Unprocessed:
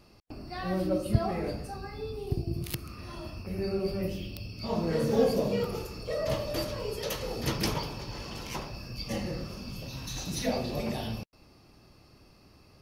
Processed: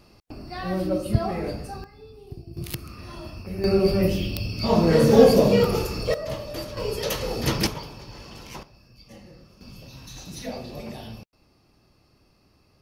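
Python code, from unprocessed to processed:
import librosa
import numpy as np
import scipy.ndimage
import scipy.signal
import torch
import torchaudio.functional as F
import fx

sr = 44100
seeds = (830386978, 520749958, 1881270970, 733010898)

y = fx.gain(x, sr, db=fx.steps((0.0, 3.5), (1.84, -8.5), (2.57, 2.5), (3.64, 11.0), (6.14, -1.0), (6.77, 6.5), (7.67, -2.5), (8.63, -13.0), (9.61, -4.0)))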